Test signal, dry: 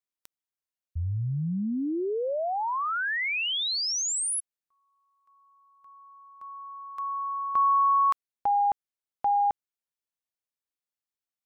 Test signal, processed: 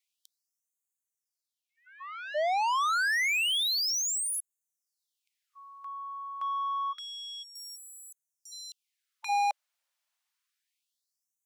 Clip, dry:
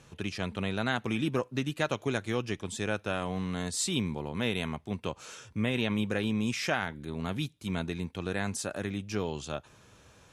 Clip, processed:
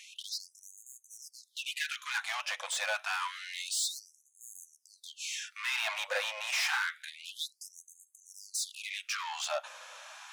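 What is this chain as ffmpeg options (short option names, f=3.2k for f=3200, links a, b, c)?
-filter_complex "[0:a]asplit=2[a][b];[b]highpass=f=720:p=1,volume=27dB,asoftclip=type=tanh:threshold=-14dB[c];[a][c]amix=inputs=2:normalize=0,lowpass=f=5.7k:p=1,volume=-6dB,afftfilt=real='re*gte(b*sr/1024,490*pow(6400/490,0.5+0.5*sin(2*PI*0.28*pts/sr)))':imag='im*gte(b*sr/1024,490*pow(6400/490,0.5+0.5*sin(2*PI*0.28*pts/sr)))':win_size=1024:overlap=0.75,volume=-7.5dB"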